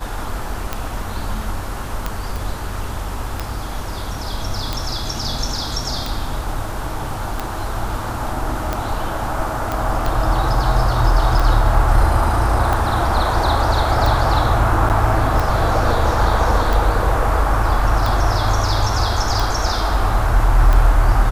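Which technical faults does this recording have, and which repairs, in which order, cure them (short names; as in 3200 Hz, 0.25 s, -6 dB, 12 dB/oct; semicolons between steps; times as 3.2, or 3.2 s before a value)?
tick 45 rpm -7 dBFS
2.36 pop
9.72 pop
14.89–14.9 gap 9.1 ms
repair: de-click; interpolate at 14.89, 9.1 ms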